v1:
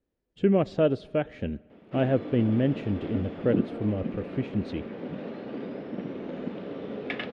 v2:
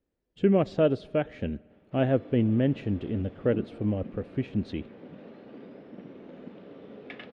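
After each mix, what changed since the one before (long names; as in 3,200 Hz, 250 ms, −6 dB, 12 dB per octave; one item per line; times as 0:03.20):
background −10.0 dB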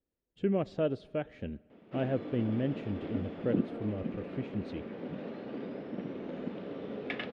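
speech −7.5 dB
background +6.0 dB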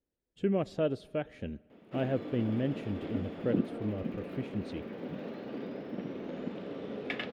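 master: remove high-frequency loss of the air 100 metres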